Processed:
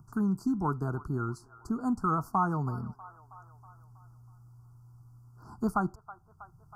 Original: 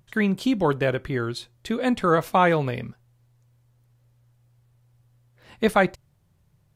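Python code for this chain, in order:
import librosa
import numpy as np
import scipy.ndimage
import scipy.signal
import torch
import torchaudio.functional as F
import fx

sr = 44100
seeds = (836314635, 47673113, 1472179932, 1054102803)

y = scipy.signal.sosfilt(scipy.signal.cheby1(5, 1.0, [1400.0, 4600.0], 'bandstop', fs=sr, output='sos'), x)
y = fx.high_shelf(y, sr, hz=4500.0, db=-7.0)
y = fx.fixed_phaser(y, sr, hz=1300.0, stages=4)
y = fx.echo_wet_bandpass(y, sr, ms=321, feedback_pct=43, hz=1200.0, wet_db=-20)
y = fx.band_squash(y, sr, depth_pct=40)
y = y * 10.0 ** (-2.5 / 20.0)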